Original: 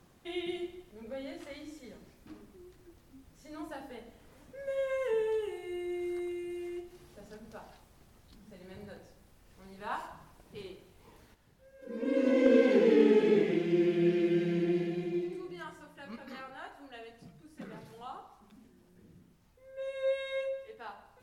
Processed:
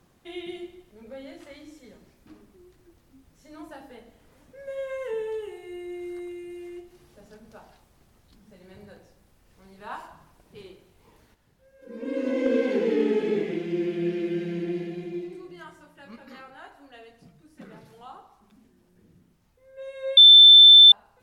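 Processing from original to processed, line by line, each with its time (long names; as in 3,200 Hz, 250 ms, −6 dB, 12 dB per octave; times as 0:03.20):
0:20.17–0:20.92: beep over 3,540 Hz −7 dBFS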